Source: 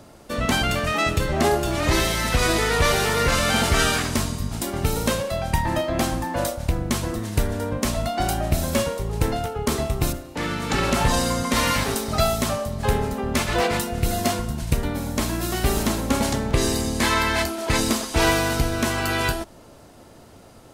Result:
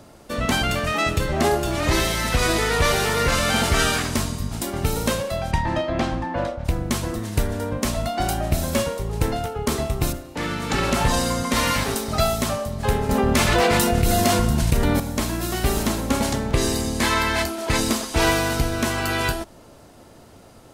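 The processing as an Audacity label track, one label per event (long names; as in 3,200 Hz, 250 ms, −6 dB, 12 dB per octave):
5.510000	6.640000	low-pass filter 6,200 Hz → 2,300 Hz
13.090000	15.000000	envelope flattener amount 70%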